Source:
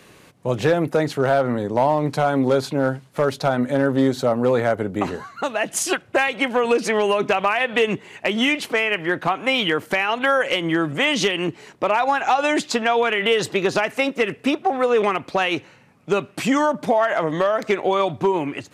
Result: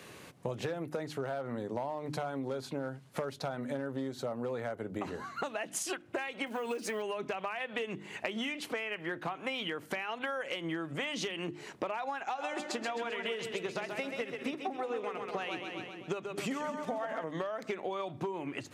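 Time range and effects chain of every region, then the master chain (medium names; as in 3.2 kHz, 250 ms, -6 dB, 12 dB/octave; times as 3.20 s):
6.46–7.02 s: companding laws mixed up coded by mu + treble shelf 10 kHz +11 dB + comb of notches 170 Hz
12.23–17.24 s: two-band feedback delay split 320 Hz, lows 220 ms, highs 131 ms, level -5.5 dB + upward expansion, over -27 dBFS
whole clip: hum notches 50/100/150/200/250/300/350 Hz; compression 12:1, threshold -31 dBFS; high-pass 54 Hz; trim -2 dB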